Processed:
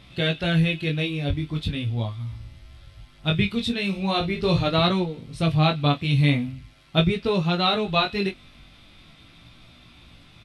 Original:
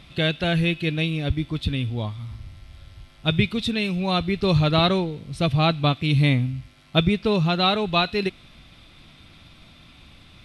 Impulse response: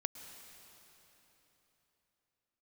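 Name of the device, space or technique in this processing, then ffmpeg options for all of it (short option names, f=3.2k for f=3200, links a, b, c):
double-tracked vocal: -filter_complex "[0:a]asettb=1/sr,asplit=3[a][b][c];[a]atrim=end=3.884[d];[b]atrim=start=3.88:end=4.67,asetpts=PTS-STARTPTS,afade=t=in:d=0.004:c=qsin,afade=t=out:st=0.786:d=0.004:c=qsin,asplit=2[e][f];[f]adelay=42,volume=-9dB[g];[e][g]amix=inputs=2:normalize=0,atrim=end_sample=34839[h];[c]atrim=start=4.666[i];[d][h]acrossfade=d=0.004:c1=hsin:c2=qsin[j];[j][i]acrossfade=d=0.004:c1=qsin:c2=hsin,asplit=2[k][l];[l]adelay=25,volume=-12dB[m];[k][m]amix=inputs=2:normalize=0,flanger=delay=16.5:depth=4.7:speed=0.41,volume=1.5dB"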